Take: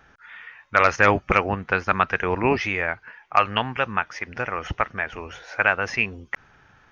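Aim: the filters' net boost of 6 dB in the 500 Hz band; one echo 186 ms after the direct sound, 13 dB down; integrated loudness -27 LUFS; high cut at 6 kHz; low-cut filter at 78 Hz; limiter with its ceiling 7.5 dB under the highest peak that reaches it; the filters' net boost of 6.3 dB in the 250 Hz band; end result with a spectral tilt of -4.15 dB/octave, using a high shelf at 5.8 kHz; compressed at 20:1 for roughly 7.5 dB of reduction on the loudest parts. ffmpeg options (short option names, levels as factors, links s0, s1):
-af "highpass=78,lowpass=6000,equalizer=f=250:t=o:g=6.5,equalizer=f=500:t=o:g=5.5,highshelf=f=5800:g=-5.5,acompressor=threshold=0.158:ratio=20,alimiter=limit=0.282:level=0:latency=1,aecho=1:1:186:0.224"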